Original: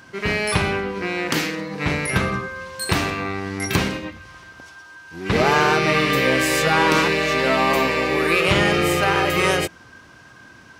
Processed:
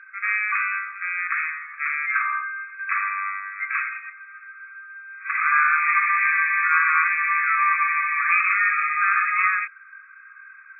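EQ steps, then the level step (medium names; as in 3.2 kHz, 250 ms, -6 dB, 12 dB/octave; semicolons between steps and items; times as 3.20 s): brick-wall FIR band-pass 1.1–2.6 kHz; distance through air 210 m; +4.5 dB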